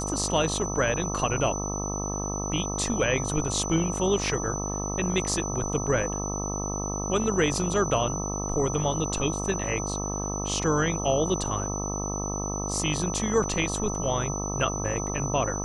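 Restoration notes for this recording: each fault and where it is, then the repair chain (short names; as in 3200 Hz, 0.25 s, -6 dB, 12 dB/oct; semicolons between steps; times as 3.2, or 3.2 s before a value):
buzz 50 Hz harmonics 26 -32 dBFS
tone 6000 Hz -33 dBFS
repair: notch 6000 Hz, Q 30; de-hum 50 Hz, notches 26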